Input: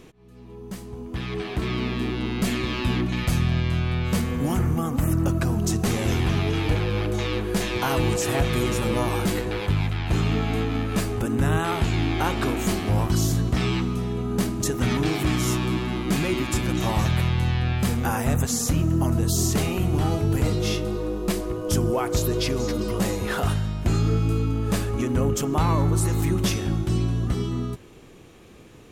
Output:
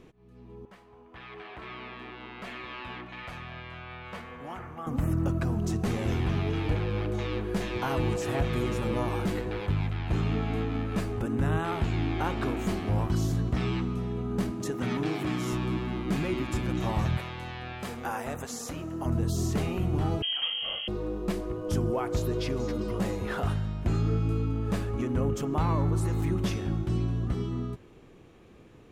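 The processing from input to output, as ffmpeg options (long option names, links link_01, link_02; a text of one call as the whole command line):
ffmpeg -i in.wav -filter_complex "[0:a]asettb=1/sr,asplit=3[link_01][link_02][link_03];[link_01]atrim=end=0.654[link_04];[link_02]atrim=start=0.65:end=4.87,asetpts=PTS-STARTPTS,afade=type=in:duration=0.004:curve=qsin,afade=type=out:start_time=4.216:duration=0.004:curve=qsin,acrossover=split=560 3500:gain=0.126 1 0.224[link_05][link_06][link_07];[link_05][link_06][link_07]amix=inputs=3:normalize=0[link_08];[link_03]atrim=start=4.866[link_09];[link_04][link_08]acrossfade=duration=0.004:curve1=hsin:curve2=qsin[link_10];[link_10][link_09]acrossfade=duration=0.004:curve1=qsin:curve2=hsin,asettb=1/sr,asplit=3[link_11][link_12][link_13];[link_11]atrim=end=14.514[link_14];[link_12]atrim=start=14.51:end=15.53,asetpts=PTS-STARTPTS,afade=type=in:duration=0.004:curve=qsin,afade=type=out:start_time=1.016:duration=0.004:curve=qsin,highpass=140[link_15];[link_13]atrim=start=15.526[link_16];[link_14][link_15]acrossfade=duration=0.004:curve1=hsin:curve2=qsin[link_17];[link_17][link_16]acrossfade=duration=0.004:curve1=qsin:curve2=hsin,asettb=1/sr,asplit=3[link_18][link_19][link_20];[link_18]atrim=end=17.174[link_21];[link_19]atrim=start=17.17:end=19.06,asetpts=PTS-STARTPTS,afade=type=in:duration=0.004:curve=qsin,afade=type=out:start_time=1.886:duration=0.004:curve=qsin,bass=frequency=250:gain=-15,treble=frequency=4000:gain=1[link_22];[link_20]atrim=start=19.056[link_23];[link_21][link_22]acrossfade=duration=0.004:curve1=hsin:curve2=qsin[link_24];[link_24][link_23]acrossfade=duration=0.004:curve1=qsin:curve2=hsin,asettb=1/sr,asplit=3[link_25][link_26][link_27];[link_25]atrim=end=20.224[link_28];[link_26]atrim=start=20.22:end=20.88,asetpts=PTS-STARTPTS,afade=type=in:duration=0.004:curve=qsin,afade=type=out:start_time=0.656:duration=0.004:curve=qsin,lowpass=frequency=2800:width_type=q:width=0.5098,lowpass=frequency=2800:width_type=q:width=0.6013,lowpass=frequency=2800:width_type=q:width=0.9,lowpass=frequency=2800:width_type=q:width=2.563,afreqshift=-3300[link_29];[link_27]atrim=start=20.876[link_30];[link_28][link_29]acrossfade=duration=0.004:curve1=hsin:curve2=qsin[link_31];[link_31][link_30]acrossfade=duration=0.004:curve1=qsin:curve2=hsin,highshelf=frequency=4000:gain=-11.5,volume=-5dB" out.wav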